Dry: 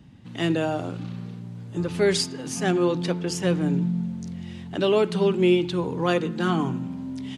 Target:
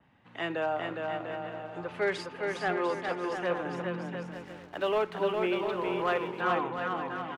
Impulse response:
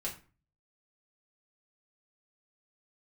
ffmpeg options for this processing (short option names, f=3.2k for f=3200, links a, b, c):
-filter_complex "[0:a]acrossover=split=530 2500:gain=0.112 1 0.1[a][b][c];[a][b][c]amix=inputs=3:normalize=0,asoftclip=type=hard:threshold=-21.5dB,aecho=1:1:410|697|897.9|1039|1137:0.631|0.398|0.251|0.158|0.1,asettb=1/sr,asplit=3[d][e][f];[d]atrim=end=4.314[g];[e]atrim=start=4.31:end=6.41,asetpts=PTS-STARTPTS,afade=t=in:d=0.004:c=qsin,afade=t=out:st=2.096:d=0.004:c=qsin,aeval=exprs='sgn(val(0))*max(abs(val(0))-0.00237,0)':c=same[h];[f]atrim=start=6.406[i];[g][h]acrossfade=d=0.004:c1=hsin:c2=qsin[j];[j][i]acrossfade=d=0.004:c1=qsin:c2=hsin,adynamicequalizer=threshold=0.00282:dfrequency=4000:dqfactor=0.7:tfrequency=4000:tqfactor=0.7:attack=5:release=100:ratio=0.375:range=3:mode=cutabove:tftype=highshelf"